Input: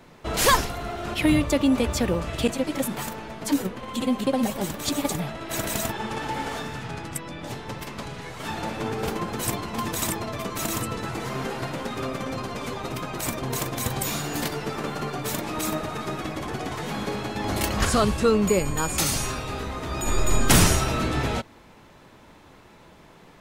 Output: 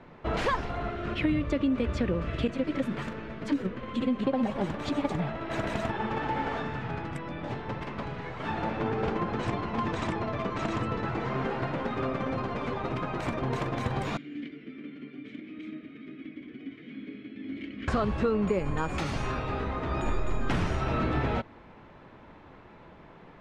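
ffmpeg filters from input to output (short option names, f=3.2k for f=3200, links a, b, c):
-filter_complex "[0:a]asettb=1/sr,asplit=3[a][b][c];[a]atrim=end=0.894[d];[b]atrim=start=0.89:end=4.23,asetpts=PTS-STARTPTS,afade=t=in:d=0.004:c=qsin,afade=t=out:st=3.336:d=0.004:c=qsin,equalizer=f=820:t=o:w=0.59:g=-11[e];[c]atrim=start=4.226[f];[d][e]acrossfade=d=0.004:c1=hsin:c2=qsin[g];[g][f]acrossfade=d=0.004:c1=qsin:c2=hsin,asettb=1/sr,asplit=3[h][i][j];[h]atrim=end=8.714[k];[i]atrim=start=8.71:end=11.37,asetpts=PTS-STARTPTS,afade=t=in:d=0.004:c=qsin,afade=t=out:st=2.656:d=0.004:c=qsin,lowpass=f=8.2k:w=0.5412,lowpass=f=8.2k:w=1.3066[l];[j]atrim=start=11.366[m];[k][l]acrossfade=d=0.004:c1=hsin:c2=qsin[n];[n][m]acrossfade=d=0.004:c1=qsin:c2=hsin,asettb=1/sr,asplit=3[o][p][q];[o]atrim=end=14.174[r];[p]atrim=start=14.17:end=17.88,asetpts=PTS-STARTPTS,afade=t=in:d=0.004:c=qsin,afade=t=out:st=3.706:d=0.004:c=qsin,asplit=3[s][t][u];[s]bandpass=f=270:t=q:w=8,volume=0dB[v];[t]bandpass=f=2.29k:t=q:w=8,volume=-6dB[w];[u]bandpass=f=3.01k:t=q:w=8,volume=-9dB[x];[v][w][x]amix=inputs=3:normalize=0[y];[q]atrim=start=17.876[z];[r][y]acrossfade=d=0.004:c1=hsin:c2=qsin[aa];[aa][z]acrossfade=d=0.004:c1=qsin:c2=hsin,acompressor=threshold=-23dB:ratio=6,lowpass=2.3k"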